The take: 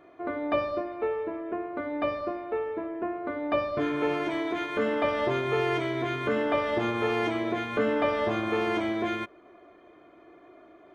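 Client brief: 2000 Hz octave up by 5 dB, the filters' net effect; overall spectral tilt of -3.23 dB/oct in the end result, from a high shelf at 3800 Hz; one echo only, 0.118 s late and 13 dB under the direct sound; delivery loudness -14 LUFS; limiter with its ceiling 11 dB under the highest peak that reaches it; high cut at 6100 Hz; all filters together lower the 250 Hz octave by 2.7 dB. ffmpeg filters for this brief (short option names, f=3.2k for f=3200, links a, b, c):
-af "lowpass=6.1k,equalizer=f=250:t=o:g=-4,equalizer=f=2k:t=o:g=7.5,highshelf=f=3.8k:g=-6,alimiter=level_in=1dB:limit=-24dB:level=0:latency=1,volume=-1dB,aecho=1:1:118:0.224,volume=18.5dB"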